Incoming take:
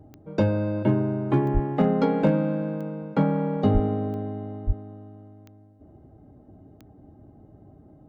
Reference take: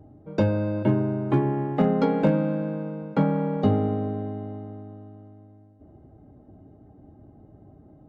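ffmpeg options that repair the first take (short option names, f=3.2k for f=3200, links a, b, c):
-filter_complex "[0:a]adeclick=t=4,asplit=3[a][b][c];[a]afade=t=out:st=1.53:d=0.02[d];[b]highpass=f=140:w=0.5412,highpass=f=140:w=1.3066,afade=t=in:st=1.53:d=0.02,afade=t=out:st=1.65:d=0.02[e];[c]afade=t=in:st=1.65:d=0.02[f];[d][e][f]amix=inputs=3:normalize=0,asplit=3[g][h][i];[g]afade=t=out:st=3.73:d=0.02[j];[h]highpass=f=140:w=0.5412,highpass=f=140:w=1.3066,afade=t=in:st=3.73:d=0.02,afade=t=out:st=3.85:d=0.02[k];[i]afade=t=in:st=3.85:d=0.02[l];[j][k][l]amix=inputs=3:normalize=0,asplit=3[m][n][o];[m]afade=t=out:st=4.66:d=0.02[p];[n]highpass=f=140:w=0.5412,highpass=f=140:w=1.3066,afade=t=in:st=4.66:d=0.02,afade=t=out:st=4.78:d=0.02[q];[o]afade=t=in:st=4.78:d=0.02[r];[p][q][r]amix=inputs=3:normalize=0"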